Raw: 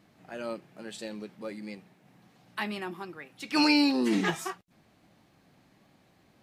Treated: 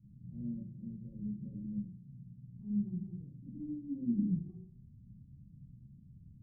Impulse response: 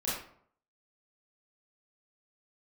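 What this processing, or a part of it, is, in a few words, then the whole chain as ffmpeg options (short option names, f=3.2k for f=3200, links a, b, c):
club heard from the street: -filter_complex "[0:a]alimiter=level_in=0.5dB:limit=-24dB:level=0:latency=1:release=132,volume=-0.5dB,lowpass=f=140:w=0.5412,lowpass=f=140:w=1.3066[a];[1:a]atrim=start_sample=2205[b];[a][b]afir=irnorm=-1:irlink=0,volume=10dB"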